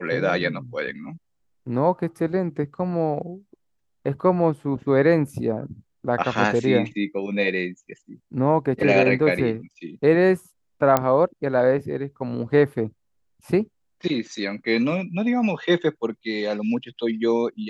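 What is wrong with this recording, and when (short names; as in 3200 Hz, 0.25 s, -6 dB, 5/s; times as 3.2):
10.97 pop -5 dBFS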